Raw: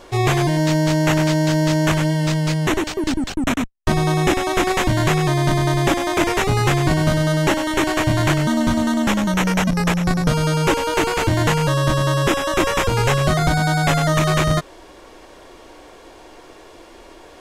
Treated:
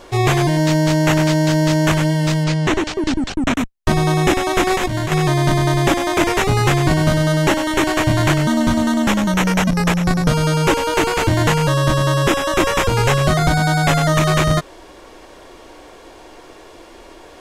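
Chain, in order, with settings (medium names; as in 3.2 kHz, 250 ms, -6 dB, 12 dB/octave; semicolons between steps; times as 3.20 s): 2.44–3.54 s: low-pass 7.1 kHz 12 dB/octave; 4.72–5.12 s: compressor with a negative ratio -22 dBFS, ratio -1; trim +2 dB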